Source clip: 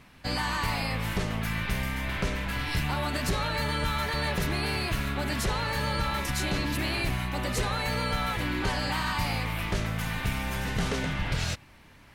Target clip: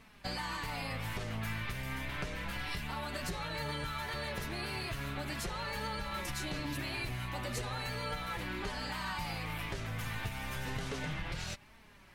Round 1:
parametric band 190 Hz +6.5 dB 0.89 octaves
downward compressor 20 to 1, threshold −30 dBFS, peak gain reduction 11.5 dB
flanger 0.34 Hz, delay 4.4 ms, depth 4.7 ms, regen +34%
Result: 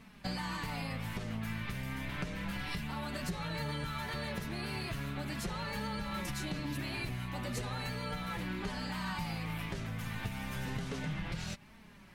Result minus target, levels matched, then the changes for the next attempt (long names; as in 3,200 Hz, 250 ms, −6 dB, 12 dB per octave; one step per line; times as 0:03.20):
250 Hz band +4.5 dB
change: parametric band 190 Hz −3 dB 0.89 octaves